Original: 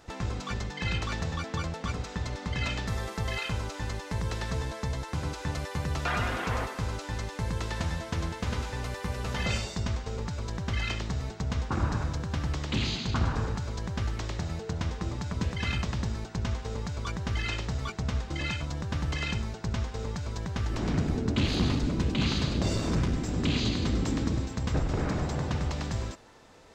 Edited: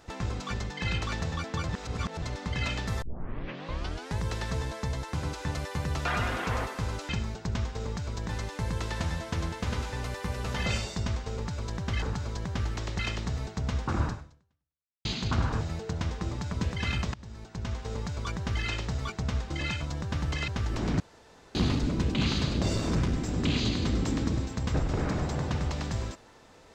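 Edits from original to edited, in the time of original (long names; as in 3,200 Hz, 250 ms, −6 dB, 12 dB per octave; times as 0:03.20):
0:01.69–0:02.22: reverse
0:03.02: tape start 1.17 s
0:11.90–0:12.88: fade out exponential
0:13.44–0:14.41: move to 0:10.82
0:15.94–0:16.74: fade in linear, from −22 dB
0:19.28–0:20.48: move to 0:07.09
0:21.00–0:21.55: fill with room tone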